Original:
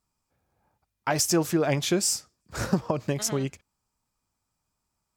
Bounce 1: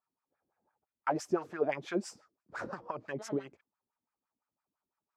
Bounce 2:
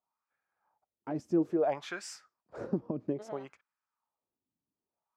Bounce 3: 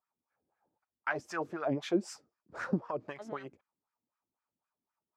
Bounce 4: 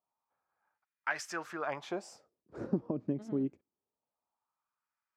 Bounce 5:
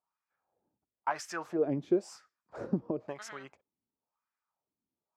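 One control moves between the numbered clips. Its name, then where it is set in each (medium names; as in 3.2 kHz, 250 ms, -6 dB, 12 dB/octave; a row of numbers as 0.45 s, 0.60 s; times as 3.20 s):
wah-wah, rate: 5.9 Hz, 0.6 Hz, 3.9 Hz, 0.24 Hz, 0.98 Hz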